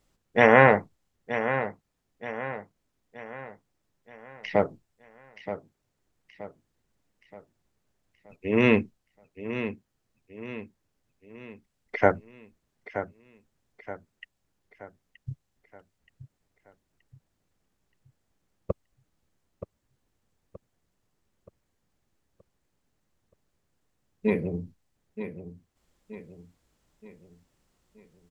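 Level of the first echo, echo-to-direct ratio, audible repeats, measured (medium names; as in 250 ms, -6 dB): -11.0 dB, -10.0 dB, 4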